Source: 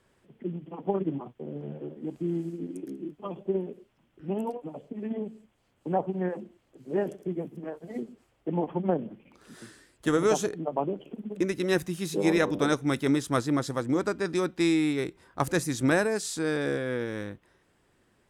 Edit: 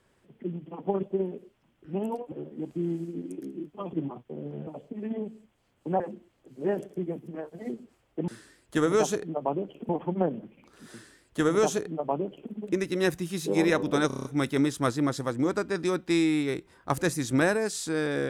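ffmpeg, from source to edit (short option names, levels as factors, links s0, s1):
-filter_complex "[0:a]asplit=14[s0][s1][s2][s3][s4][s5][s6][s7][s8][s9][s10][s11][s12][s13];[s0]atrim=end=1.032[s14];[s1]atrim=start=3.378:end=4.672[s15];[s2]atrim=start=1.768:end=3.382[s16];[s3]atrim=start=1.028:end=1.772[s17];[s4]atrim=start=4.668:end=6.002[s18];[s5]atrim=start=6.288:end=8.572[s19];[s6]atrim=start=9.588:end=11.202[s20];[s7]atrim=start=8.568:end=12.782[s21];[s8]atrim=start=12.748:end=12.782[s22];[s9]atrim=start=12.748:end=12.782[s23];[s10]atrim=start=12.748:end=12.782[s24];[s11]atrim=start=12.748:end=12.782[s25];[s12]atrim=start=12.748:end=12.782[s26];[s13]atrim=start=12.748[s27];[s14][s15]acrossfade=d=0.004:c1=hsin:c2=hsin[s28];[s28][s16]acrossfade=d=0.004:c1=hsin:c2=hsin[s29];[s29][s17]acrossfade=d=0.004:c1=hsin:c2=hsin[s30];[s30][s18]acrossfade=d=0.004:c1=hsin:c2=hsin[s31];[s31][s19]acrossfade=d=0.004:c1=hsin:c2=hsin[s32];[s32][s20]acrossfade=d=0.004:c1=hsin:c2=hsin[s33];[s33][s21]acrossfade=d=0.004:c1=hsin:c2=hsin[s34];[s34][s22]acrossfade=d=0.004:c1=hsin:c2=hsin[s35];[s35][s23]acrossfade=d=0.004:c1=hsin:c2=hsin[s36];[s36][s24]acrossfade=d=0.004:c1=hsin:c2=hsin[s37];[s37][s25]acrossfade=d=0.004:c1=hsin:c2=hsin[s38];[s38][s26]acrossfade=d=0.004:c1=hsin:c2=hsin[s39];[s39][s27]acrossfade=d=0.004:c1=hsin:c2=hsin"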